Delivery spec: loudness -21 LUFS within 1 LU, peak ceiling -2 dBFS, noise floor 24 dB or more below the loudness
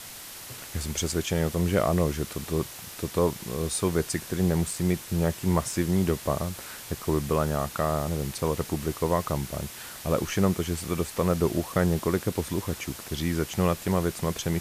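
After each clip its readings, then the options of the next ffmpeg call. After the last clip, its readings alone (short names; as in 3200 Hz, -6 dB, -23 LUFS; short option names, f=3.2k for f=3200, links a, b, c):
noise floor -42 dBFS; noise floor target -52 dBFS; loudness -28.0 LUFS; peak -10.5 dBFS; loudness target -21.0 LUFS
-> -af "afftdn=nr=10:nf=-42"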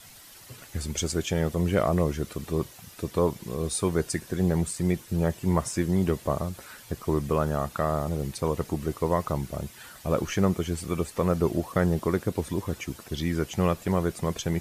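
noise floor -49 dBFS; noise floor target -52 dBFS
-> -af "afftdn=nr=6:nf=-49"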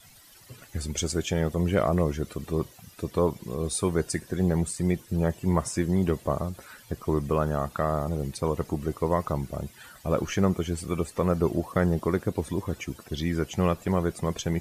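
noise floor -53 dBFS; loudness -28.0 LUFS; peak -10.5 dBFS; loudness target -21.0 LUFS
-> -af "volume=7dB"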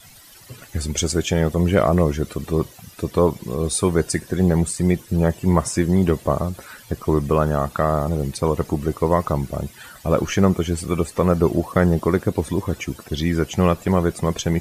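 loudness -21.0 LUFS; peak -3.5 dBFS; noise floor -46 dBFS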